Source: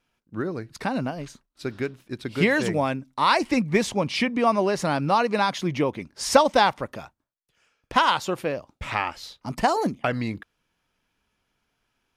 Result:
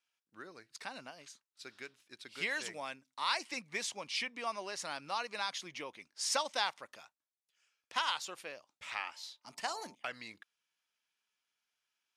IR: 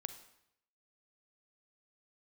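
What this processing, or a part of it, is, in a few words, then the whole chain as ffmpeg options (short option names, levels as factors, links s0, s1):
piezo pickup straight into a mixer: -filter_complex "[0:a]asettb=1/sr,asplit=3[s0][s1][s2];[s0]atrim=end=9.044[s3];[s1]atrim=start=9.04:end=9.95,asetpts=PTS-STARTPTS,afade=t=in:d=0.004:c=qsin,afade=t=out:st=0.906:d=0.004:c=qsin,bandreject=f=99.29:t=h:w=4,bandreject=f=198.58:t=h:w=4,bandreject=f=297.87:t=h:w=4,bandreject=f=397.16:t=h:w=4,bandreject=f=496.45:t=h:w=4,bandreject=f=595.74:t=h:w=4,bandreject=f=695.03:t=h:w=4,bandreject=f=794.32:t=h:w=4,bandreject=f=893.61:t=h:w=4,bandreject=f=992.9:t=h:w=4,bandreject=f=1092.19:t=h:w=4[s4];[s2]atrim=start=9.946[s5];[s3][s4]acrossfade=d=0.004:c1=hsin:c2=qsin[s6];[s6][s5]acrossfade=d=0.004:c1=qsin:c2=hsin,lowpass=8200,aderivative,highshelf=f=3600:g=-6.5,volume=1.19"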